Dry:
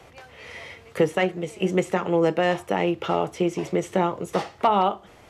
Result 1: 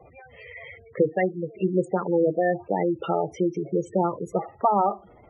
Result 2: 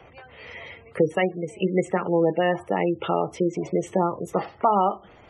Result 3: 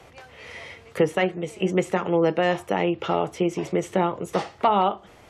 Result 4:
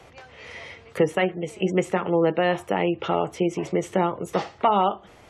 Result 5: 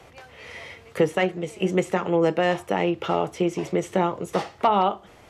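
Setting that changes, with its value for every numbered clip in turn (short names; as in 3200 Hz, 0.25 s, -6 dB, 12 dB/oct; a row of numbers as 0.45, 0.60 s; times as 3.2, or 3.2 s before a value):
spectral gate, under each frame's peak: -10, -20, -45, -35, -60 dB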